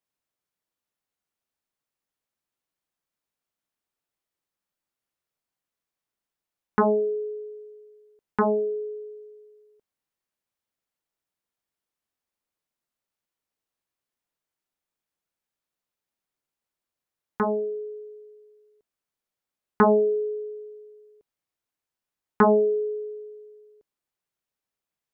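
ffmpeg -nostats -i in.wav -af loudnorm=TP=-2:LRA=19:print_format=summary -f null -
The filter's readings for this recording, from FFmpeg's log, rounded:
Input Integrated:    -24.2 LUFS
Input True Peak:     -10.6 dBTP
Input LRA:             4.4 LU
Input Threshold:     -37.2 LUFS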